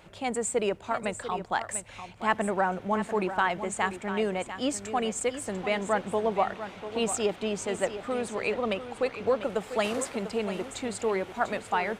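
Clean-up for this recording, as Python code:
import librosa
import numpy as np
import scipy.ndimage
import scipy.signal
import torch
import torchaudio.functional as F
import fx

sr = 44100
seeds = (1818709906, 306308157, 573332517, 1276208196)

y = fx.fix_echo_inverse(x, sr, delay_ms=695, level_db=-11.0)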